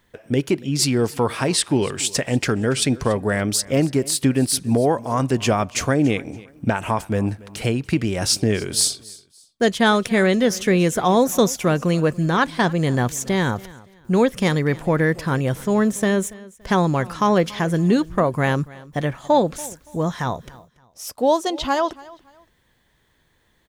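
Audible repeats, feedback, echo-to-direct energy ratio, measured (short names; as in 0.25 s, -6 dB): 2, 28%, -20.5 dB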